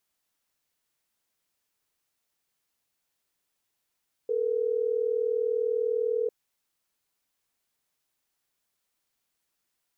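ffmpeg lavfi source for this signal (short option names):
-f lavfi -i "aevalsrc='0.0447*(sin(2*PI*440*t)+sin(2*PI*480*t))*clip(min(mod(t,6),2-mod(t,6))/0.005,0,1)':d=3.12:s=44100"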